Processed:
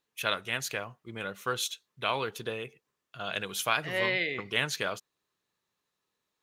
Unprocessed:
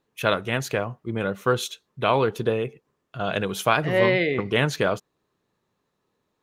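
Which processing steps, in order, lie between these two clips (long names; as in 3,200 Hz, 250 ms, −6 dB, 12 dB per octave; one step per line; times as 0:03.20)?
tilt shelving filter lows −7.5 dB, about 1,200 Hz
level −7.5 dB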